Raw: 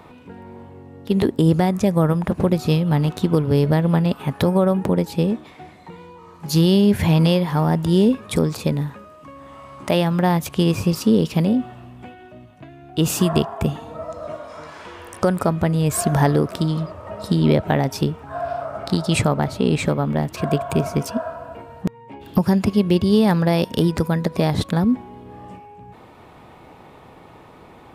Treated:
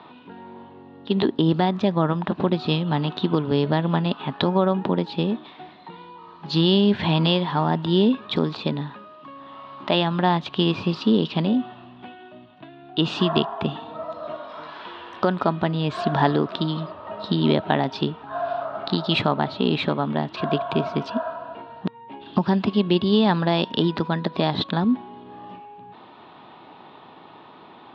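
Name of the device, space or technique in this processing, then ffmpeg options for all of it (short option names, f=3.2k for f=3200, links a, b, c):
kitchen radio: -af "highpass=210,equalizer=f=500:t=q:w=4:g=-7,equalizer=f=980:t=q:w=4:g=3,equalizer=f=2.2k:t=q:w=4:g=-7,lowpass=f=3.4k:w=0.5412,lowpass=f=3.4k:w=1.3066,equalizer=f=3.9k:w=1.6:g=11"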